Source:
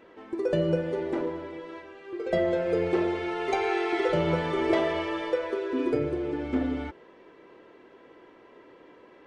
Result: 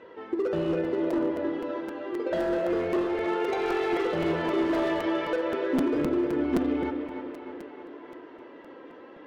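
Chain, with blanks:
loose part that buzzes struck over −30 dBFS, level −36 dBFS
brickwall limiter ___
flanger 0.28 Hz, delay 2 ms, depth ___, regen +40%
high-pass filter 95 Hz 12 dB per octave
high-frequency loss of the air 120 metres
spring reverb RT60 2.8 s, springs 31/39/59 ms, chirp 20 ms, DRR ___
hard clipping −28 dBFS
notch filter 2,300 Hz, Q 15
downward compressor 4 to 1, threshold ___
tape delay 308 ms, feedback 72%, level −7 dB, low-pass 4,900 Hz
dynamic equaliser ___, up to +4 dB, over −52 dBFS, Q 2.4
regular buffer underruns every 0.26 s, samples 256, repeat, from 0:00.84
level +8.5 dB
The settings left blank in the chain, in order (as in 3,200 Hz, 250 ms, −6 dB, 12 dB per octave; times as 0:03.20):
−16 dBFS, 1.9 ms, 13.5 dB, −35 dBFS, 270 Hz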